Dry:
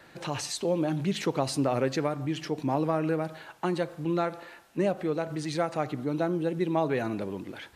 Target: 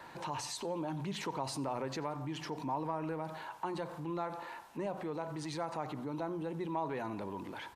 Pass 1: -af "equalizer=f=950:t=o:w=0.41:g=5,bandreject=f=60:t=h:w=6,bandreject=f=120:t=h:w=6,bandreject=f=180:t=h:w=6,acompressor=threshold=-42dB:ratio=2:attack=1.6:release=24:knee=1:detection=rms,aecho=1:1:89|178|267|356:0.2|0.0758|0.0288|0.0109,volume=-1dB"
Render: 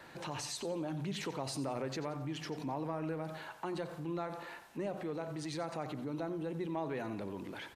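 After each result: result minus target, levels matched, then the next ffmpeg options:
echo-to-direct +9 dB; 1000 Hz band -4.0 dB
-af "equalizer=f=950:t=o:w=0.41:g=5,bandreject=f=60:t=h:w=6,bandreject=f=120:t=h:w=6,bandreject=f=180:t=h:w=6,acompressor=threshold=-42dB:ratio=2:attack=1.6:release=24:knee=1:detection=rms,aecho=1:1:89|178|267:0.0708|0.0269|0.0102,volume=-1dB"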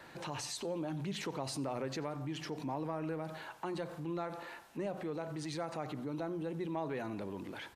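1000 Hz band -4.0 dB
-af "equalizer=f=950:t=o:w=0.41:g=15,bandreject=f=60:t=h:w=6,bandreject=f=120:t=h:w=6,bandreject=f=180:t=h:w=6,acompressor=threshold=-42dB:ratio=2:attack=1.6:release=24:knee=1:detection=rms,aecho=1:1:89|178|267:0.0708|0.0269|0.0102,volume=-1dB"

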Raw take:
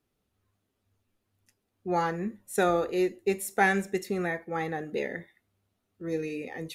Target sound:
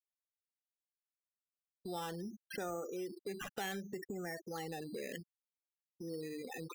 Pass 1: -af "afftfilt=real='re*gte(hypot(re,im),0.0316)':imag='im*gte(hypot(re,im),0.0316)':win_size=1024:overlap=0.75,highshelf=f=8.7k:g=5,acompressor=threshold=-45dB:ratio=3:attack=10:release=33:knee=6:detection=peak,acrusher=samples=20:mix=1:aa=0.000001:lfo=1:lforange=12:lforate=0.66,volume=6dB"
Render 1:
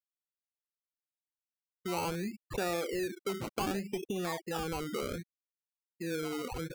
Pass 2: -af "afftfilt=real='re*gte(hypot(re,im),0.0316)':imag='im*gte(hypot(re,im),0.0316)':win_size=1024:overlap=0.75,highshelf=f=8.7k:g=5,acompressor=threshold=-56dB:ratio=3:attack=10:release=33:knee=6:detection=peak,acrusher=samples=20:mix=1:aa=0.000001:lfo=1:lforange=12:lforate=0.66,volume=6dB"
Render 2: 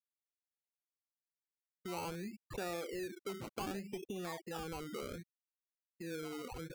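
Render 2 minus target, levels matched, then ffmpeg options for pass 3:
decimation with a swept rate: distortion +7 dB
-af "afftfilt=real='re*gte(hypot(re,im),0.0316)':imag='im*gte(hypot(re,im),0.0316)':win_size=1024:overlap=0.75,highshelf=f=8.7k:g=5,acompressor=threshold=-56dB:ratio=3:attack=10:release=33:knee=6:detection=peak,acrusher=samples=8:mix=1:aa=0.000001:lfo=1:lforange=4.8:lforate=0.66,volume=6dB"

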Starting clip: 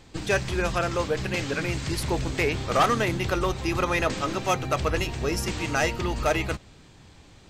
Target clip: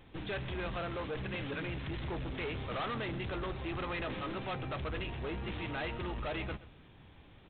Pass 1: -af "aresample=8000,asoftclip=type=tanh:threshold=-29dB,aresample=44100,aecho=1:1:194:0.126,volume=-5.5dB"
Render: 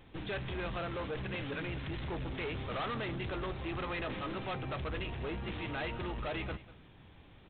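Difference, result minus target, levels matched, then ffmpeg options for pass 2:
echo 68 ms late
-af "aresample=8000,asoftclip=type=tanh:threshold=-29dB,aresample=44100,aecho=1:1:126:0.126,volume=-5.5dB"

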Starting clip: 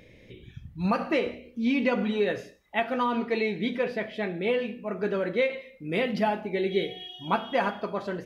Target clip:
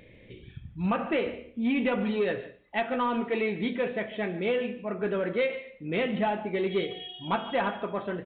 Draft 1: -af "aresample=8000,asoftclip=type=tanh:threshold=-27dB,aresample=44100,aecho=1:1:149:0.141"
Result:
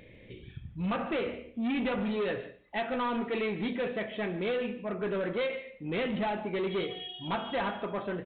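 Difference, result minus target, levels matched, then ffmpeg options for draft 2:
soft clip: distortion +9 dB
-af "aresample=8000,asoftclip=type=tanh:threshold=-18.5dB,aresample=44100,aecho=1:1:149:0.141"

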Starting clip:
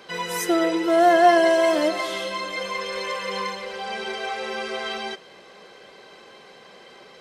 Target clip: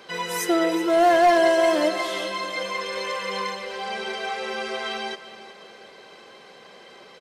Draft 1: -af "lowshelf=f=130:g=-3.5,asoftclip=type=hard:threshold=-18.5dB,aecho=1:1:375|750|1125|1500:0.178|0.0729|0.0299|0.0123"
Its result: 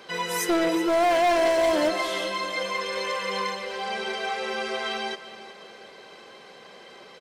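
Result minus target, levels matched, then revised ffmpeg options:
hard clip: distortion +9 dB
-af "lowshelf=f=130:g=-3.5,asoftclip=type=hard:threshold=-12dB,aecho=1:1:375|750|1125|1500:0.178|0.0729|0.0299|0.0123"

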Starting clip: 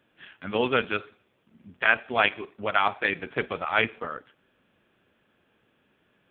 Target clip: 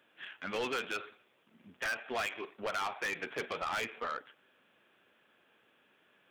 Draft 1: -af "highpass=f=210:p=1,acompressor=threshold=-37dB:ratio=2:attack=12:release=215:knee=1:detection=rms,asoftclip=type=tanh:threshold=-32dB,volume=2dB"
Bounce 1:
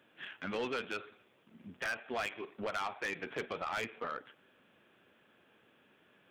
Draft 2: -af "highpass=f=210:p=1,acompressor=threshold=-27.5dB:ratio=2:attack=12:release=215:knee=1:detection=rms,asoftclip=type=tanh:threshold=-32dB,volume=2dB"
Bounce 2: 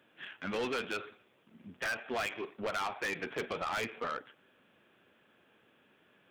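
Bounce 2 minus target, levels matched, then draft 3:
250 Hz band +4.0 dB
-af "highpass=f=600:p=1,acompressor=threshold=-27.5dB:ratio=2:attack=12:release=215:knee=1:detection=rms,asoftclip=type=tanh:threshold=-32dB,volume=2dB"

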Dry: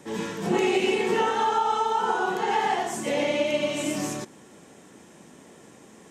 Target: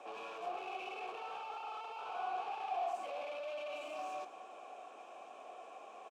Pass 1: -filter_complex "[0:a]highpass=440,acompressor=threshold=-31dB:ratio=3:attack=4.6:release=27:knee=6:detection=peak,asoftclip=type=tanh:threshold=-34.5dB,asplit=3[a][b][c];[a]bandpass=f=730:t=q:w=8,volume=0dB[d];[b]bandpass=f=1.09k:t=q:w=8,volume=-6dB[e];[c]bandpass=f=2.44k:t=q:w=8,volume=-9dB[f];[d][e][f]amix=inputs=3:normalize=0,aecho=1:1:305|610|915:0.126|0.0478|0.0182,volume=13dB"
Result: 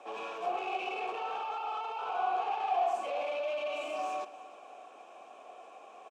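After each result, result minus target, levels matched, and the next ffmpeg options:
echo 0.107 s late; soft clip: distortion -5 dB
-filter_complex "[0:a]highpass=440,acompressor=threshold=-31dB:ratio=3:attack=4.6:release=27:knee=6:detection=peak,asoftclip=type=tanh:threshold=-34.5dB,asplit=3[a][b][c];[a]bandpass=f=730:t=q:w=8,volume=0dB[d];[b]bandpass=f=1.09k:t=q:w=8,volume=-6dB[e];[c]bandpass=f=2.44k:t=q:w=8,volume=-9dB[f];[d][e][f]amix=inputs=3:normalize=0,aecho=1:1:198|396|594:0.126|0.0478|0.0182,volume=13dB"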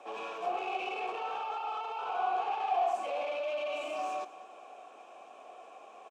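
soft clip: distortion -5 dB
-filter_complex "[0:a]highpass=440,acompressor=threshold=-31dB:ratio=3:attack=4.6:release=27:knee=6:detection=peak,asoftclip=type=tanh:threshold=-44dB,asplit=3[a][b][c];[a]bandpass=f=730:t=q:w=8,volume=0dB[d];[b]bandpass=f=1.09k:t=q:w=8,volume=-6dB[e];[c]bandpass=f=2.44k:t=q:w=8,volume=-9dB[f];[d][e][f]amix=inputs=3:normalize=0,aecho=1:1:198|396|594:0.126|0.0478|0.0182,volume=13dB"

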